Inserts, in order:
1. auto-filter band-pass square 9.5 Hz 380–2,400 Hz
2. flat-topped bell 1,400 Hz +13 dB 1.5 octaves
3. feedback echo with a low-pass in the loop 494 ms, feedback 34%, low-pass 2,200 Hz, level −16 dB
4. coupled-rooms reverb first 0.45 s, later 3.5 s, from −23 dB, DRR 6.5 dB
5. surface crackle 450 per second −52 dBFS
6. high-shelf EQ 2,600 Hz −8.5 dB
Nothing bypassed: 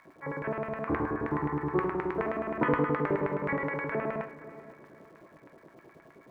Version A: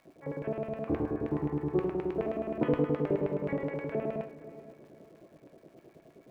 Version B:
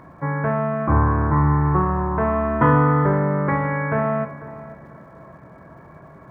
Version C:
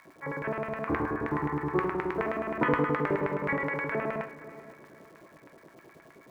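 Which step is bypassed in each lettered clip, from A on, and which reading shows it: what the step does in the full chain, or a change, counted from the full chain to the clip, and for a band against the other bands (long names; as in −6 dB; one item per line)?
2, 2 kHz band −11.5 dB
1, change in crest factor −3.5 dB
6, 2 kHz band +2.5 dB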